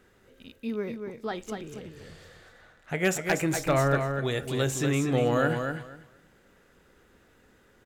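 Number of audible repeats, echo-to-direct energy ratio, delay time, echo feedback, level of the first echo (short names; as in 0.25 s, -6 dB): 2, -6.0 dB, 0.241 s, 18%, -6.0 dB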